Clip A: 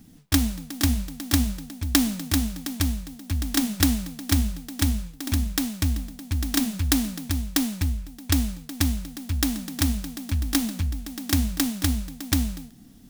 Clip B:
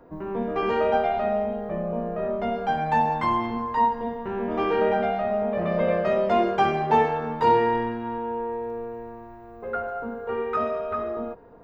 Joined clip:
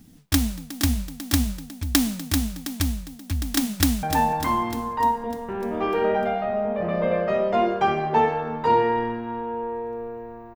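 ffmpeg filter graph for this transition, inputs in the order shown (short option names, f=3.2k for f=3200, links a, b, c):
-filter_complex "[0:a]apad=whole_dur=10.55,atrim=end=10.55,atrim=end=4.032[a];[1:a]atrim=start=2.798:end=9.32[b];[a][b]acrossfade=d=0.004:c1=hsin:c2=hsin,asplit=2[c][d];[d]afade=t=in:st=3.71:d=0.01,afade=t=out:st=4.03:d=0.01,aecho=0:1:300|600|900|1200|1500|1800|2100|2400:0.398107|0.238864|0.143319|0.0859911|0.0515947|0.0309568|0.0185741|0.0111445[e];[c][e]amix=inputs=2:normalize=0"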